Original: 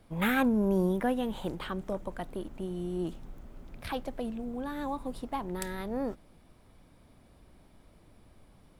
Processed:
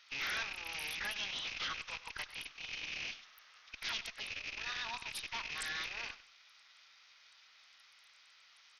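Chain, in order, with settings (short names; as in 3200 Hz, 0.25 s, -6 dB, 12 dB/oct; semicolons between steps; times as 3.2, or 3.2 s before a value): rattling part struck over -41 dBFS, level -36 dBFS; Bessel high-pass 2300 Hz, order 4; formant-preserving pitch shift -3 st; tube stage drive 51 dB, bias 0.5; feedback echo 98 ms, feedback 22%, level -16 dB; gain +15.5 dB; SBC 64 kbps 48000 Hz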